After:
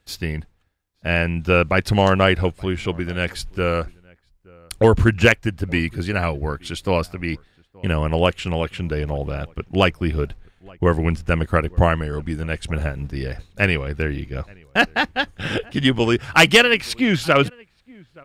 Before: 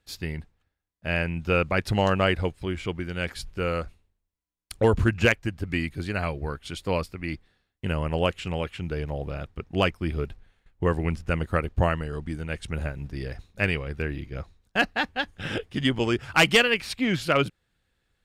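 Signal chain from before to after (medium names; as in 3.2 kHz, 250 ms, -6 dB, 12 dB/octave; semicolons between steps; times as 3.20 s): echo from a far wall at 150 m, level -26 dB; trim +6.5 dB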